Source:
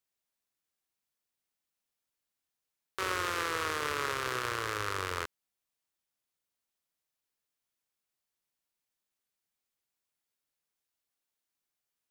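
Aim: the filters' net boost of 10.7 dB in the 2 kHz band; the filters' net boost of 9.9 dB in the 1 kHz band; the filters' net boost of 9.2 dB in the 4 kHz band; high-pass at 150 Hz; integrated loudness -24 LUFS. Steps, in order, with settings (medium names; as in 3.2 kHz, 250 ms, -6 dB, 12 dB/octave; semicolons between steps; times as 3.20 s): high-pass 150 Hz; peaking EQ 1 kHz +8.5 dB; peaking EQ 2 kHz +9 dB; peaking EQ 4 kHz +8 dB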